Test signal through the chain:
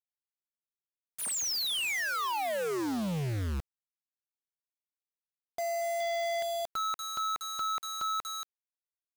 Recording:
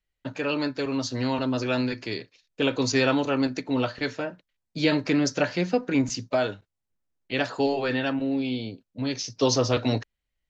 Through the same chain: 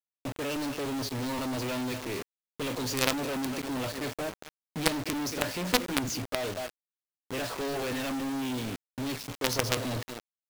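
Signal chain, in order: low-pass opened by the level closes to 460 Hz, open at -20.5 dBFS; bell 1500 Hz -7 dB 0.48 oct; speakerphone echo 0.23 s, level -15 dB; companded quantiser 2-bit; gain -6.5 dB

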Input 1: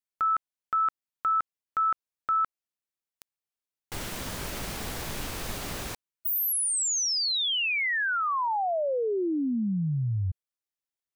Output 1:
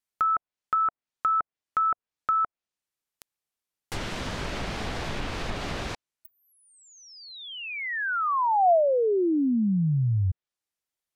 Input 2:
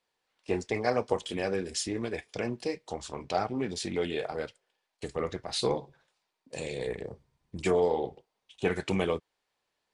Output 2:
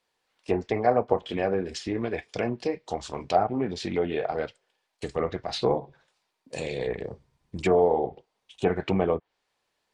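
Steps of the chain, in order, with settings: treble ducked by the level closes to 1300 Hz, closed at -25.5 dBFS; dynamic EQ 700 Hz, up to +6 dB, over -46 dBFS, Q 4.3; gain +4 dB

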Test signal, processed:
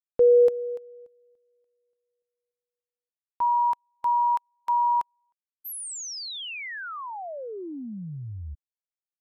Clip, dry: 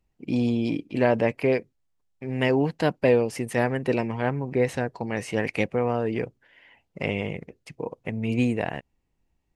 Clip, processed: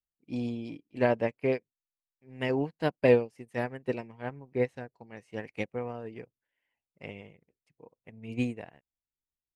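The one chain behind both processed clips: upward expander 2.5:1, over -35 dBFS

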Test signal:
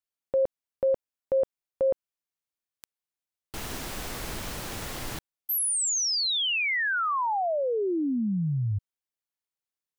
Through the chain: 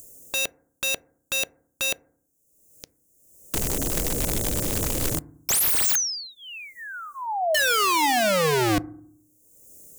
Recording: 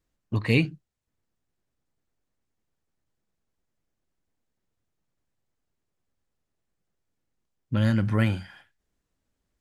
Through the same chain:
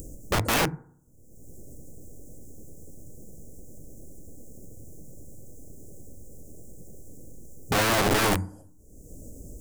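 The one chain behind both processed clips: elliptic band-stop 550–6900 Hz, stop band 40 dB; upward compressor, threshold -26 dBFS; wrapped overs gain 26 dB; FDN reverb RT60 0.59 s, low-frequency decay 1.6×, high-frequency decay 0.25×, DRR 18 dB; gain +8 dB

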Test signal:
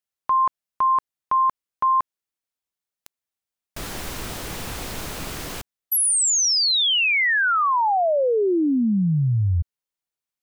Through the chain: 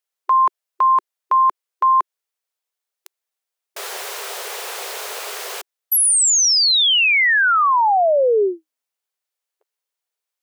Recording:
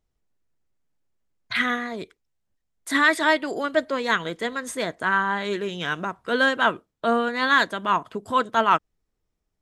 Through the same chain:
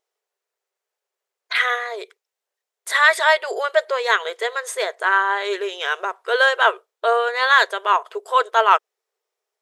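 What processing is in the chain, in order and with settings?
brick-wall FIR high-pass 370 Hz; gain +4.5 dB

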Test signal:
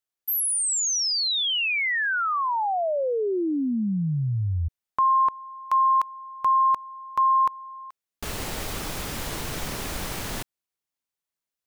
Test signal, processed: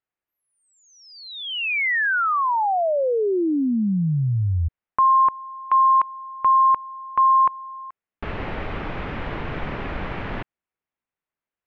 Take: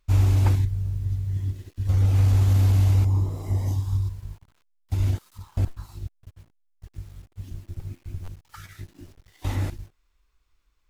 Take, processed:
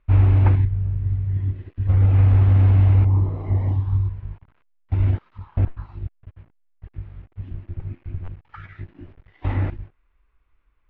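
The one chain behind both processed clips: LPF 2500 Hz 24 dB/oct; gain +4 dB

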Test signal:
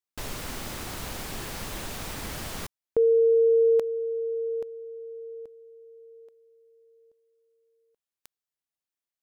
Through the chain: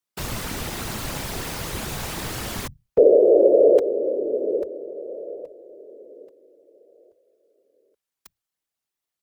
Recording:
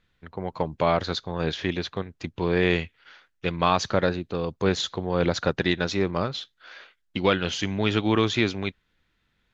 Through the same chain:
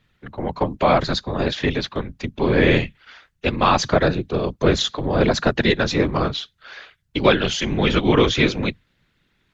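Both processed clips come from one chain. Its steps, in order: bell 90 Hz +4 dB 0.23 oct; frequency shift +15 Hz; wow and flutter 0.6 Hz 51 cents; short-mantissa float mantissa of 8-bit; whisperiser; gain +5.5 dB

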